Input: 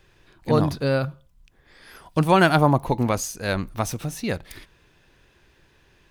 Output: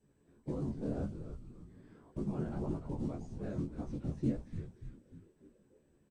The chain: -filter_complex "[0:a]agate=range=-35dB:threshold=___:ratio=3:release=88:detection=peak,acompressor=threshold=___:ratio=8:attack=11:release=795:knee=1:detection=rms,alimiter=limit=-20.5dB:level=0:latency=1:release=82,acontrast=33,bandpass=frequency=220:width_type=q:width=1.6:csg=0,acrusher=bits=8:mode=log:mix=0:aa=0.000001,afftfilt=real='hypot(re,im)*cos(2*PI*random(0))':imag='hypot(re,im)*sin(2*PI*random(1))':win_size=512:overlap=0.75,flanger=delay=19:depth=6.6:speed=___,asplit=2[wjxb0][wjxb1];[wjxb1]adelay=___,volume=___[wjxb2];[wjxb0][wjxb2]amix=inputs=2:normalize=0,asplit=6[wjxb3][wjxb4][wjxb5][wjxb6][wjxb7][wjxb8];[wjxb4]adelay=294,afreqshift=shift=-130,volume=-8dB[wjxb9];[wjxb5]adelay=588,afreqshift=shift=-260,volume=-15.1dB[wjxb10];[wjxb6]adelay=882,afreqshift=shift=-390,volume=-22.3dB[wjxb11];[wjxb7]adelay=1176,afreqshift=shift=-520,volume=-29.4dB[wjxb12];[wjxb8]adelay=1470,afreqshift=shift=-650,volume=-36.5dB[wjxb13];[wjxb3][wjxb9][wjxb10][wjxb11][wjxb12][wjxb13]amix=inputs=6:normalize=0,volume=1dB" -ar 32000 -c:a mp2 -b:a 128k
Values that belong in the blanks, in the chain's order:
-57dB, -19dB, 1.8, 14, -4.5dB